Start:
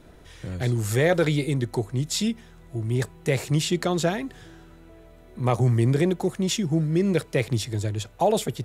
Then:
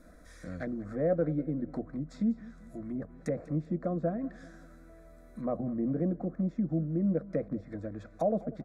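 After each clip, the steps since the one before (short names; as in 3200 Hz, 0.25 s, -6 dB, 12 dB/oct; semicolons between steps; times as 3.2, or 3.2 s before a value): treble ducked by the level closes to 620 Hz, closed at -21 dBFS; fixed phaser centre 590 Hz, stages 8; feedback echo 0.194 s, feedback 45%, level -19.5 dB; gain -2.5 dB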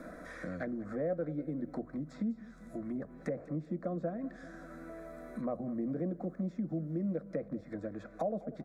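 low shelf 130 Hz -10 dB; on a send at -21 dB: reverb RT60 0.95 s, pre-delay 5 ms; on the sum: three-band squash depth 70%; gain -3 dB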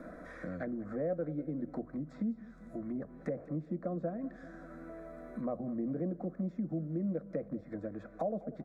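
high shelf 2800 Hz -10 dB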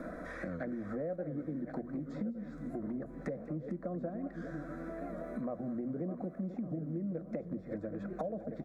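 regenerating reverse delay 0.581 s, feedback 42%, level -10 dB; compressor 3:1, threshold -42 dBFS, peak gain reduction 9.5 dB; record warp 78 rpm, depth 100 cents; gain +5 dB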